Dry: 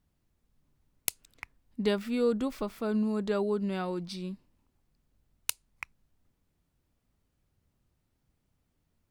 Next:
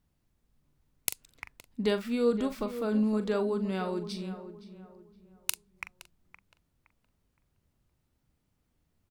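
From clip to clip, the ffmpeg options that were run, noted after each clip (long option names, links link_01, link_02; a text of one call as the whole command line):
ffmpeg -i in.wav -filter_complex "[0:a]asplit=2[link_01][link_02];[link_02]adelay=42,volume=-11dB[link_03];[link_01][link_03]amix=inputs=2:normalize=0,asplit=2[link_04][link_05];[link_05]adelay=517,lowpass=frequency=1900:poles=1,volume=-12dB,asplit=2[link_06][link_07];[link_07]adelay=517,lowpass=frequency=1900:poles=1,volume=0.35,asplit=2[link_08][link_09];[link_09]adelay=517,lowpass=frequency=1900:poles=1,volume=0.35,asplit=2[link_10][link_11];[link_11]adelay=517,lowpass=frequency=1900:poles=1,volume=0.35[link_12];[link_04][link_06][link_08][link_10][link_12]amix=inputs=5:normalize=0" out.wav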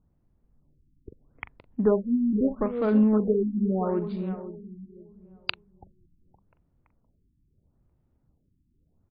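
ffmpeg -i in.wav -af "adynamicsmooth=sensitivity=2.5:basefreq=1000,afftfilt=real='re*lt(b*sr/1024,340*pow(5000/340,0.5+0.5*sin(2*PI*0.78*pts/sr)))':imag='im*lt(b*sr/1024,340*pow(5000/340,0.5+0.5*sin(2*PI*0.78*pts/sr)))':win_size=1024:overlap=0.75,volume=7dB" out.wav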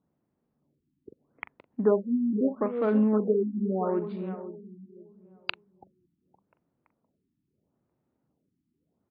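ffmpeg -i in.wav -af "highpass=220,lowpass=3100" out.wav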